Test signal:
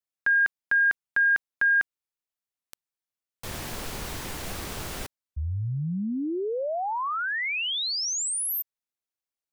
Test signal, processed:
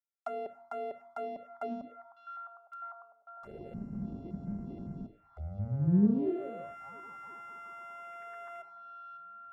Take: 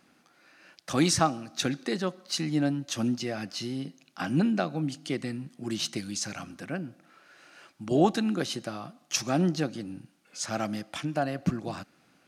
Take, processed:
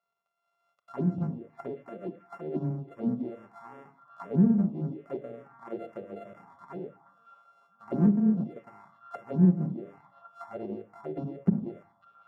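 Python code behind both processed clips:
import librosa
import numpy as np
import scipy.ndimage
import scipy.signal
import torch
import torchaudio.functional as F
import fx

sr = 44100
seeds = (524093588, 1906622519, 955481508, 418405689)

p1 = np.r_[np.sort(x[:len(x) // 64 * 64].reshape(-1, 64), axis=1).ravel(), x[len(x) // 64 * 64:]]
p2 = p1 + fx.echo_stepped(p1, sr, ms=552, hz=2700.0, octaves=-0.7, feedback_pct=70, wet_db=-11.0, dry=0)
p3 = fx.room_shoebox(p2, sr, seeds[0], volume_m3=2100.0, walls='furnished', distance_m=1.2)
p4 = fx.rider(p3, sr, range_db=3, speed_s=2.0)
p5 = fx.low_shelf(p4, sr, hz=170.0, db=11.5)
p6 = fx.env_phaser(p5, sr, low_hz=280.0, high_hz=3300.0, full_db=-17.0)
p7 = fx.dynamic_eq(p6, sr, hz=920.0, q=0.8, threshold_db=-42.0, ratio=4.0, max_db=8)
p8 = fx.auto_wah(p7, sr, base_hz=200.0, top_hz=1500.0, q=4.4, full_db=-18.0, direction='down')
y = fx.doppler_dist(p8, sr, depth_ms=0.32)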